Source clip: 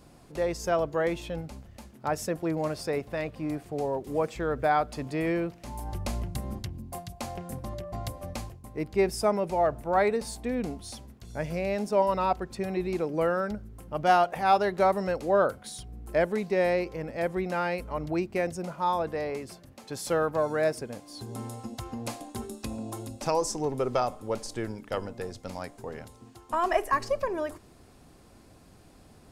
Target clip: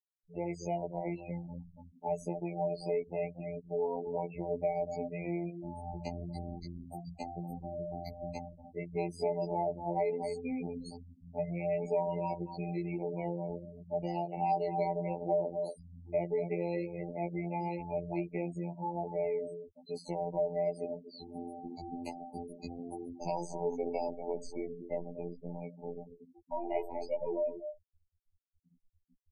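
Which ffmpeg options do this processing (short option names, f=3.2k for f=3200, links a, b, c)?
-filter_complex "[0:a]aecho=1:1:4.9:0.89,bandreject=f=80.34:t=h:w=4,bandreject=f=160.68:t=h:w=4,bandreject=f=241.02:t=h:w=4,bandreject=f=321.36:t=h:w=4,asplit=2[a][b];[b]aecho=0:1:237:0.251[c];[a][c]amix=inputs=2:normalize=0,afftfilt=real='re*gte(hypot(re,im),0.0282)':imag='im*gte(hypot(re,im),0.0282)':win_size=1024:overlap=0.75,afftfilt=real='hypot(re,im)*cos(PI*b)':imag='0':win_size=2048:overlap=0.75,acrossover=split=440|1300|5600[d][e][f][g];[d]acompressor=threshold=-35dB:ratio=4[h];[e]acompressor=threshold=-31dB:ratio=4[i];[f]acompressor=threshold=-48dB:ratio=4[j];[g]acompressor=threshold=-53dB:ratio=4[k];[h][i][j][k]amix=inputs=4:normalize=0,afftfilt=real='re*eq(mod(floor(b*sr/1024/990),2),0)':imag='im*eq(mod(floor(b*sr/1024/990),2),0)':win_size=1024:overlap=0.75,volume=-1.5dB"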